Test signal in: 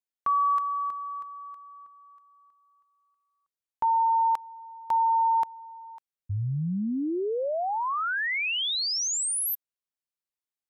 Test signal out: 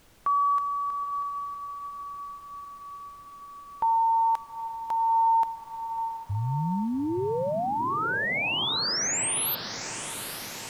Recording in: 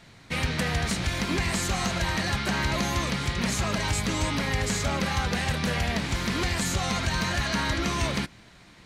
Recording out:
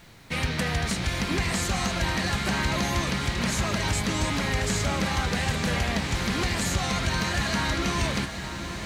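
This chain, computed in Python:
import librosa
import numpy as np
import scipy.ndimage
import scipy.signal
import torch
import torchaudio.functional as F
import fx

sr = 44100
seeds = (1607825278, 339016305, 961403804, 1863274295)

y = fx.echo_diffused(x, sr, ms=832, feedback_pct=68, wet_db=-10.0)
y = fx.dmg_noise_colour(y, sr, seeds[0], colour='pink', level_db=-58.0)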